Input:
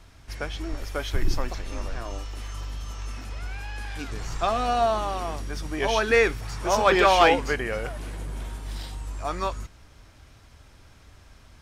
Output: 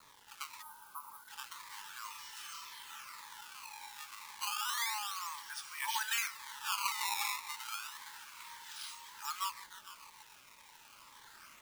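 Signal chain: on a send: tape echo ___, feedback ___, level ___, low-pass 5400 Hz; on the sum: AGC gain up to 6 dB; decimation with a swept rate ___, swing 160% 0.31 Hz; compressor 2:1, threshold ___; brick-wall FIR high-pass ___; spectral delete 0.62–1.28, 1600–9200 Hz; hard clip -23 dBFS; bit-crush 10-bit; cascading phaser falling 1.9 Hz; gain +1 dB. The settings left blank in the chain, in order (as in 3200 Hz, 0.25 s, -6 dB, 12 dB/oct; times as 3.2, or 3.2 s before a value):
0.151 s, 65%, -18 dB, 16×, -40 dBFS, 820 Hz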